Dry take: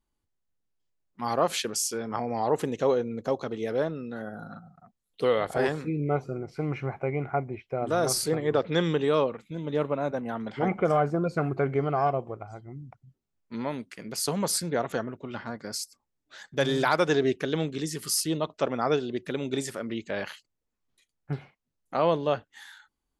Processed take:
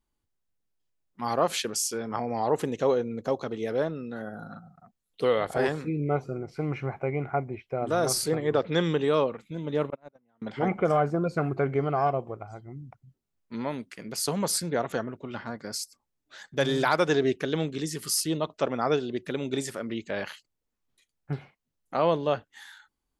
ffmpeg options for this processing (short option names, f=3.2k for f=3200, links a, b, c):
-filter_complex "[0:a]asettb=1/sr,asplit=3[a][b][c];[a]atrim=end=9.904[d];[b]atrim=start=9.9:end=10.42,asetpts=PTS-STARTPTS,afade=t=in:d=0.004:c=qsin,afade=t=out:st=0.516:d=0.004:c=qsin,agate=range=-37dB:threshold=-25dB:ratio=16:release=100:detection=peak[e];[c]atrim=start=10.416[f];[d][e]acrossfade=d=0.004:c1=hsin:c2=qsin[g];[g][f]acrossfade=d=0.004:c1=qsin:c2=hsin"